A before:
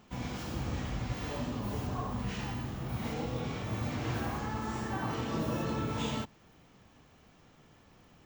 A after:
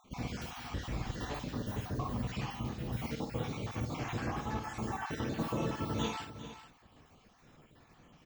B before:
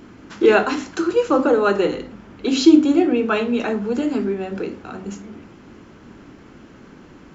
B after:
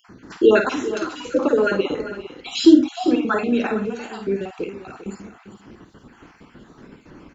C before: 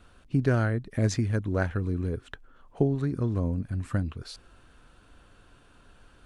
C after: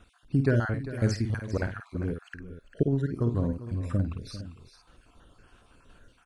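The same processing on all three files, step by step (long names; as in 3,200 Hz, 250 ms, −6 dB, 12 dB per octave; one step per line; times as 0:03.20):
time-frequency cells dropped at random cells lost 44%
multi-tap delay 51/397/457 ms −7.5/−14/−15 dB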